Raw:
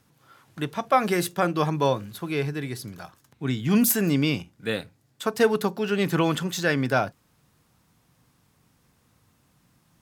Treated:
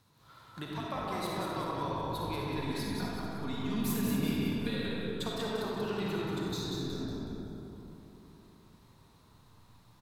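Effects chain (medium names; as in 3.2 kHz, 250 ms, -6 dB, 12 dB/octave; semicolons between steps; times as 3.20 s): graphic EQ with 31 bands 100 Hz +8 dB, 1 kHz +9 dB, 4 kHz +11 dB; compression 6:1, threshold -32 dBFS, peak gain reduction 19 dB; 2.57–5.29 s: comb 4.2 ms, depth 68%; 6.19–7.58 s: time-frequency box 460–3500 Hz -16 dB; frequency-shifting echo 186 ms, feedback 46%, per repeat -50 Hz, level -4.5 dB; reverberation RT60 3.5 s, pre-delay 15 ms, DRR -4 dB; trim -7 dB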